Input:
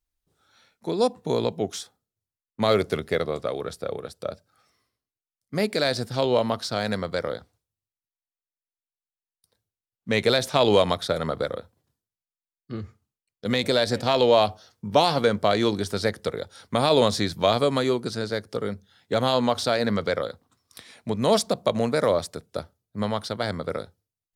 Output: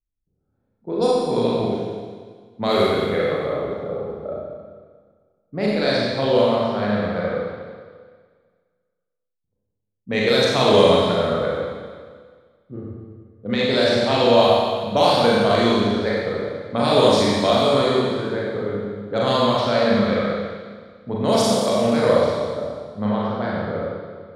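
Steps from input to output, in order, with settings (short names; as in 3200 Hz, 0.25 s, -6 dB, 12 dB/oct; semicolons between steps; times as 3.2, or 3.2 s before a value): low-pass opened by the level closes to 310 Hz, open at -16 dBFS; Schroeder reverb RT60 1.7 s, combs from 30 ms, DRR -6 dB; gain -2 dB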